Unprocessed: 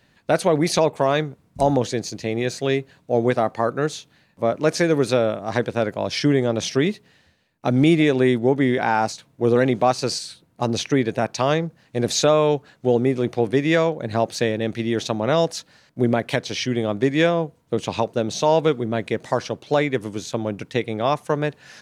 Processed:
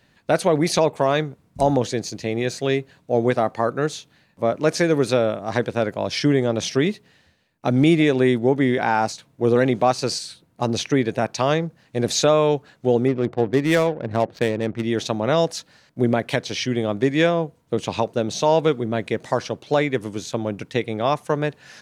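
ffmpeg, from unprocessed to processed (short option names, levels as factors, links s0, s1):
-filter_complex "[0:a]asettb=1/sr,asplit=3[s0][s1][s2];[s0]atrim=end=13.084[s3];[s1]atrim=start=13.08:end=14.83,asetpts=PTS-STARTPTS,afade=t=in:d=0.004:c=qsin,afade=t=out:st=1.746:d=0.004:c=qsin,adynamicsmooth=sensitivity=2.5:basefreq=710[s4];[s2]atrim=start=14.826[s5];[s3][s4]acrossfade=d=0.004:c1=hsin:c2=qsin[s6];[s6][s5]acrossfade=d=0.004:c1=qsin:c2=hsin"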